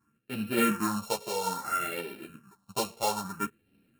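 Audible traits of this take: a buzz of ramps at a fixed pitch in blocks of 32 samples; phasing stages 4, 0.6 Hz, lowest notch 260–1100 Hz; random-step tremolo; a shimmering, thickened sound

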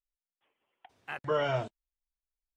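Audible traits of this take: noise floor -96 dBFS; spectral tilt -4.0 dB/oct

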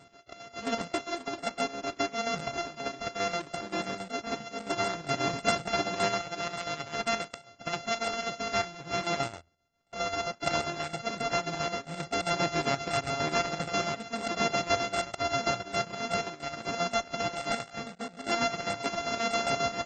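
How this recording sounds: a buzz of ramps at a fixed pitch in blocks of 64 samples; chopped level 7.5 Hz, depth 60%, duty 60%; AAC

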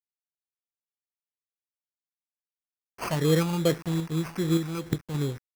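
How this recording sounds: a quantiser's noise floor 8-bit, dither none; random-step tremolo; phasing stages 4, 2.5 Hz, lowest notch 400–1100 Hz; aliases and images of a low sample rate 3700 Hz, jitter 0%

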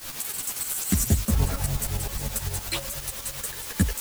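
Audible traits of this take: phasing stages 8, 3.7 Hz, lowest notch 100–2100 Hz; a quantiser's noise floor 6-bit, dither triangular; tremolo saw up 9.7 Hz, depth 70%; a shimmering, thickened sound

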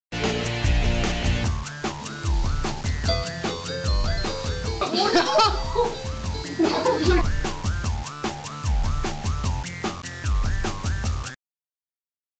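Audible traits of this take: a quantiser's noise floor 6-bit, dither none; Vorbis

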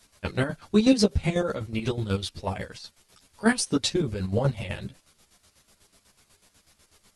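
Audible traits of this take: chopped level 8.1 Hz, depth 65%, duty 45%; a shimmering, thickened sound

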